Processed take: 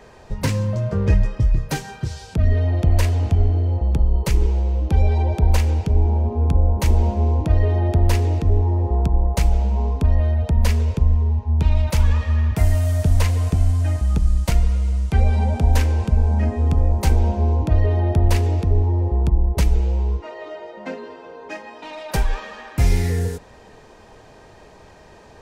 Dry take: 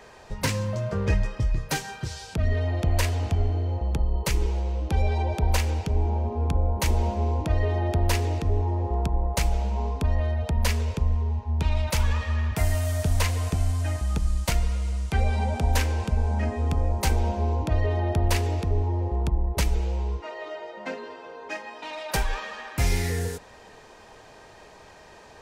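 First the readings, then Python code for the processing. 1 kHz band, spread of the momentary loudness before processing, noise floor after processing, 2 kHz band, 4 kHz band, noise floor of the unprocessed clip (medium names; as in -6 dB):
+1.5 dB, 8 LU, -46 dBFS, -0.5 dB, -1.0 dB, -49 dBFS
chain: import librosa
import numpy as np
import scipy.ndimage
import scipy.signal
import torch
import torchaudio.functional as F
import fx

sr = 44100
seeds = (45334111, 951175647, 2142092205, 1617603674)

y = fx.low_shelf(x, sr, hz=500.0, db=8.5)
y = y * librosa.db_to_amplitude(-1.0)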